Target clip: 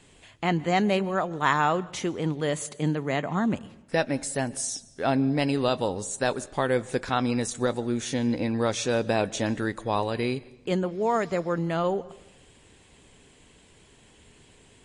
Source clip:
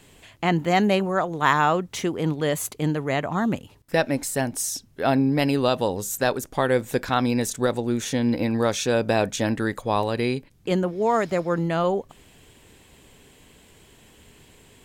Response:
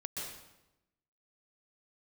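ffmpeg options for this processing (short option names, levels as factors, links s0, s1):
-filter_complex "[0:a]asettb=1/sr,asplit=3[s0][s1][s2];[s0]atrim=end=2.634[s3];[s1]atrim=start=2.63:end=3.54,asetpts=PTS-STARTPTS,afade=t=in:d=0.004:c=qsin,afade=t=out:st=0.906:d=0.004:c=qsin,lowshelf=f=110:t=q:w=1.5:g=-10.5[s4];[s2]atrim=start=3.536[s5];[s3][s4]acrossfade=d=0.004:c1=hsin:c2=qsin[s6];[s6][s5]acrossfade=d=0.004:c1=qsin:c2=hsin,asplit=2[s7][s8];[1:a]atrim=start_sample=2205[s9];[s8][s9]afir=irnorm=-1:irlink=0,volume=0.106[s10];[s7][s10]amix=inputs=2:normalize=0,volume=0.668" -ar 24000 -c:a libmp3lame -b:a 40k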